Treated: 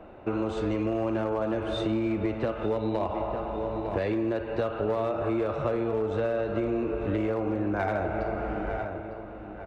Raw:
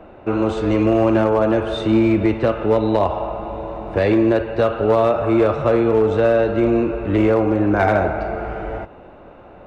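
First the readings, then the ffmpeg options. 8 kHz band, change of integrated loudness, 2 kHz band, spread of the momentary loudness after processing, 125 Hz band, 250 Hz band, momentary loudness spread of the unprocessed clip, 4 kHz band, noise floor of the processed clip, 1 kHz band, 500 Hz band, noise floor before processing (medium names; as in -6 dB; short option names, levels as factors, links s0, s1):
no reading, -11.5 dB, -11.0 dB, 4 LU, -10.5 dB, -11.5 dB, 11 LU, -9.0 dB, -41 dBFS, -10.5 dB, -11.0 dB, -42 dBFS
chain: -filter_complex "[0:a]asplit=2[s0][s1];[s1]adelay=903,lowpass=f=3400:p=1,volume=0.224,asplit=2[s2][s3];[s3]adelay=903,lowpass=f=3400:p=1,volume=0.37,asplit=2[s4][s5];[s5]adelay=903,lowpass=f=3400:p=1,volume=0.37,asplit=2[s6][s7];[s7]adelay=903,lowpass=f=3400:p=1,volume=0.37[s8];[s0][s2][s4][s6][s8]amix=inputs=5:normalize=0,acompressor=threshold=0.112:ratio=6,volume=0.531"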